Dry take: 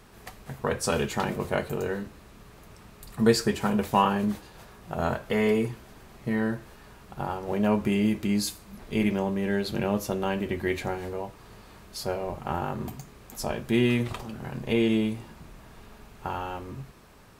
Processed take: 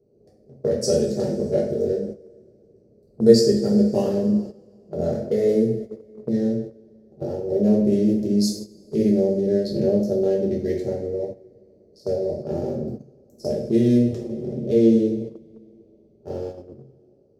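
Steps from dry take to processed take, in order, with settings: Wiener smoothing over 25 samples; EQ curve 170 Hz 0 dB, 370 Hz +11 dB, 570 Hz +10 dB, 1000 Hz -25 dB, 1800 Hz -12 dB, 2900 Hz -17 dB, 5200 Hz +8 dB, 7600 Hz 0 dB, 15000 Hz -4 dB; two-slope reverb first 0.52 s, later 2.9 s, from -18 dB, DRR -4 dB; dynamic EQ 400 Hz, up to -4 dB, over -24 dBFS, Q 1.8; gate -27 dBFS, range -12 dB; HPF 76 Hz; gain -3 dB

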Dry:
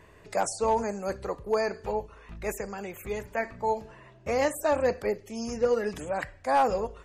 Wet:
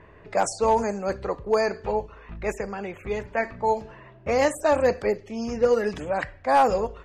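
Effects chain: low-pass opened by the level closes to 2200 Hz, open at -20.5 dBFS; gain +4.5 dB

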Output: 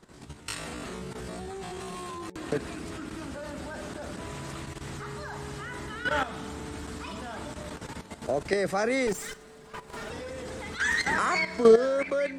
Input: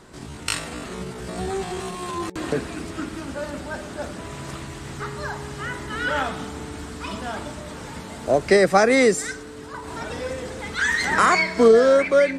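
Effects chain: 9.07–10.1 minimum comb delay 4.9 ms; level quantiser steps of 12 dB; gain -2 dB

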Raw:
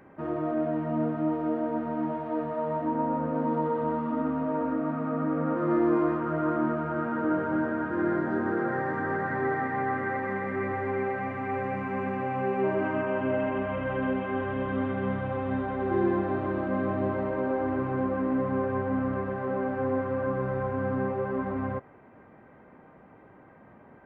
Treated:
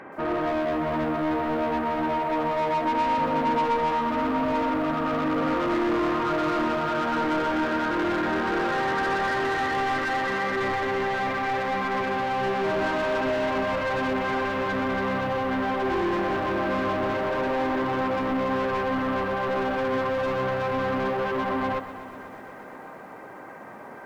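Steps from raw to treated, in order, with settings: overdrive pedal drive 26 dB, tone 2900 Hz, clips at -14.5 dBFS; lo-fi delay 0.123 s, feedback 80%, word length 8-bit, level -14.5 dB; gain -4 dB

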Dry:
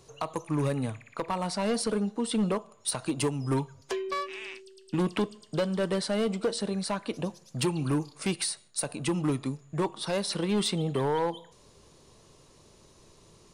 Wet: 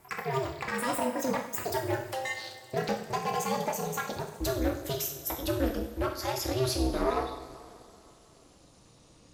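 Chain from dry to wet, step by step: speed glide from 195% -> 95%; two-slope reverb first 0.54 s, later 2.8 s, from -15 dB, DRR 0.5 dB; ring modulator 130 Hz; gain -1 dB

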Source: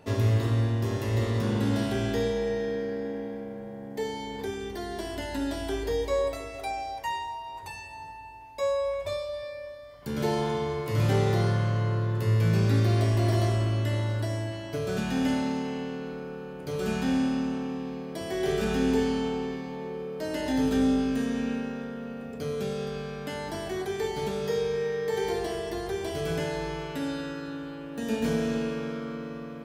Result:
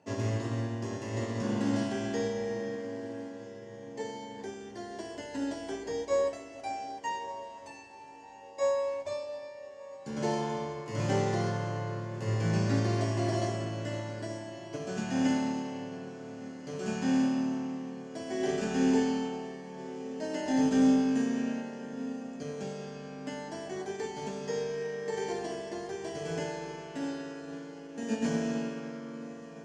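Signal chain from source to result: speaker cabinet 170–7600 Hz, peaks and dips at 430 Hz -5 dB, 1300 Hz -6 dB, 2300 Hz -4 dB, 3700 Hz -10 dB, 6800 Hz +5 dB; diffused feedback echo 1.328 s, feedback 54%, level -12.5 dB; upward expander 1.5:1, over -42 dBFS; gain +2 dB

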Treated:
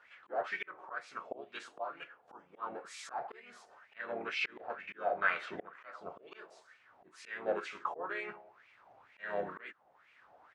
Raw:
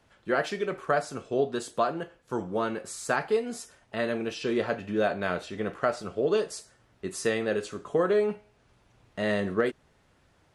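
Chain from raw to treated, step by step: harmoniser -12 st -16 dB, -3 st -3 dB; auto swell 0.623 s; wah 2.1 Hz 700–2400 Hz, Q 4.7; gain +12.5 dB

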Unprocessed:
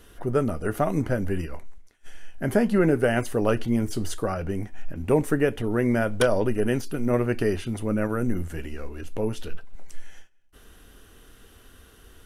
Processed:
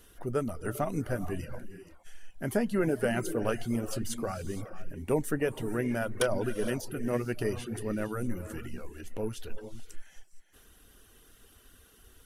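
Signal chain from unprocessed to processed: high shelf 5000 Hz +7.5 dB; non-linear reverb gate 0.5 s rising, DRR 9.5 dB; reverb removal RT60 0.54 s; gain -7 dB

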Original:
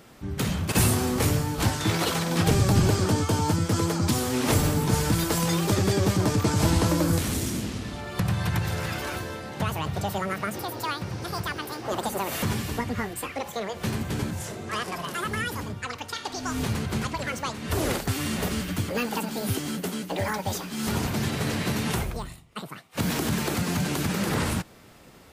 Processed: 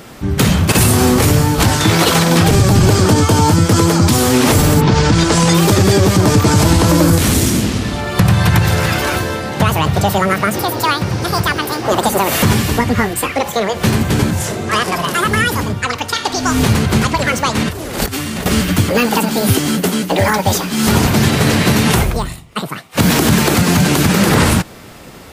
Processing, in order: 4.8–5.53 LPF 4700 Hz -> 10000 Hz 24 dB/oct; 17.55–18.46 negative-ratio compressor -36 dBFS, ratio -1; maximiser +16 dB; gain -1 dB

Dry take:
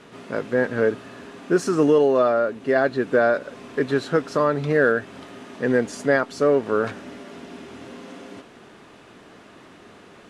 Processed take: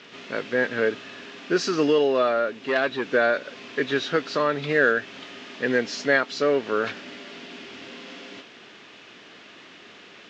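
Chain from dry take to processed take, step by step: nonlinear frequency compression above 3400 Hz 1.5:1; weighting filter D; 2.53–3.06 core saturation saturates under 1300 Hz; gain -3 dB

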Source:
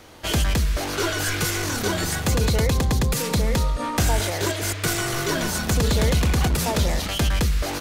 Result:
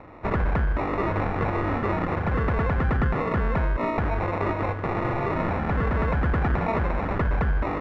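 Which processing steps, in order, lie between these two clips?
limiter -17 dBFS, peak gain reduction 6.5 dB; sample-and-hold 28×; synth low-pass 1600 Hz, resonance Q 2.5

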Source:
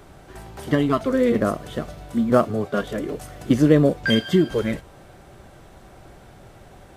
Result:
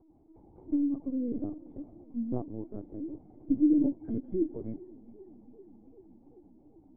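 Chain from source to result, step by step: vocal tract filter u; LPC vocoder at 8 kHz pitch kept; warbling echo 0.394 s, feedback 78%, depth 139 cents, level -24 dB; gain -5 dB

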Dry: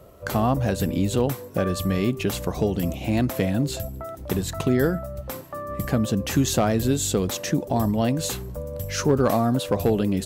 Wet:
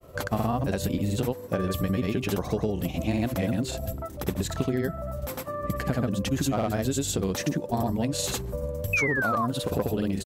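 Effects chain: grains, pitch spread up and down by 0 st; painted sound fall, 8.93–9.46, 1000–2600 Hz -20 dBFS; compressor, threshold -24 dBFS, peak gain reduction 10.5 dB; gain +1.5 dB

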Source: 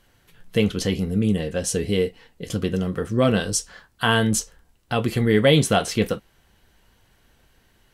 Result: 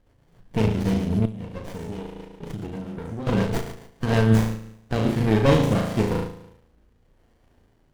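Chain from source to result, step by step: bin magnitudes rounded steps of 15 dB; flutter echo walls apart 6.2 m, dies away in 0.76 s; rotary speaker horn 7.5 Hz, later 0.85 Hz, at 3.77; 1.25–3.27 compressor 12:1, threshold -29 dBFS, peak gain reduction 18.5 dB; running maximum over 33 samples

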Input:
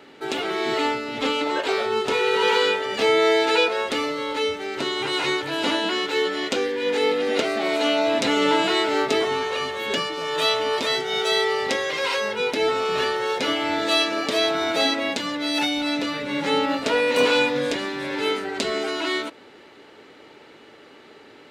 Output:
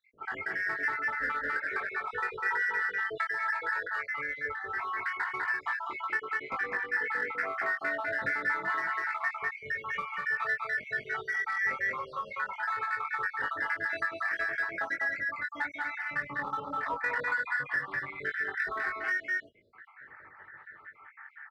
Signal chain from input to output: random spectral dropouts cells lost 71%; EQ curve 120 Hz 0 dB, 270 Hz -18 dB, 530 Hz -13 dB, 1800 Hz +14 dB, 2800 Hz -19 dB, 6300 Hz -30 dB; on a send: echo 0.2 s -4 dB; on the sum: compressor 10:1, threshold -24 dBFS, peak gain reduction 9.5 dB; in parallel at -10 dB: hard clip -28 dBFS, distortion -10 dB; on the sum: doubler 21 ms -4 dB; gain -6 dB

